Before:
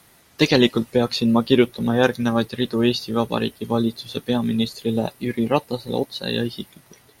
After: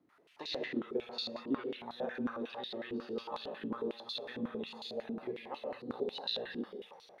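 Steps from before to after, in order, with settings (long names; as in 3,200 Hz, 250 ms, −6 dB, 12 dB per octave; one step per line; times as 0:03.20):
downward compressor, threshold −24 dBFS, peak gain reduction 13.5 dB
echo through a band-pass that steps 451 ms, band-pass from 600 Hz, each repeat 0.7 octaves, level −7.5 dB
reverb whose tail is shaped and stops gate 260 ms flat, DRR −1.5 dB
band-pass on a step sequencer 11 Hz 290–4,000 Hz
level −3.5 dB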